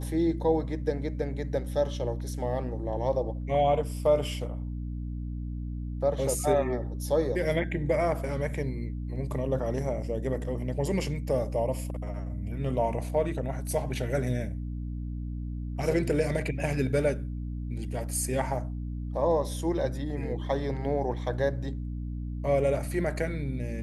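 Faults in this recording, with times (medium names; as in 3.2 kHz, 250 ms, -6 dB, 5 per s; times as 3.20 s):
hum 60 Hz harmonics 5 -34 dBFS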